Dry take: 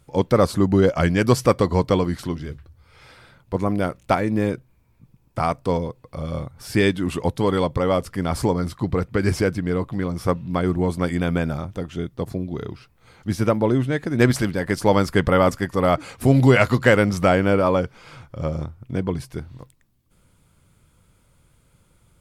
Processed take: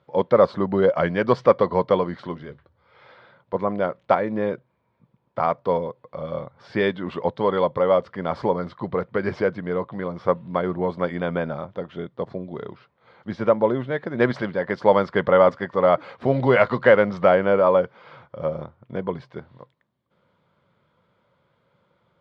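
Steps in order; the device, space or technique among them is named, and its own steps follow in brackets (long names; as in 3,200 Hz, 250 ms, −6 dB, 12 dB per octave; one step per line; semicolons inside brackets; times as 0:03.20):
kitchen radio (loudspeaker in its box 200–3,500 Hz, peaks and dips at 290 Hz −8 dB, 560 Hz +6 dB, 1,000 Hz +4 dB, 2,600 Hz −8 dB)
level −1 dB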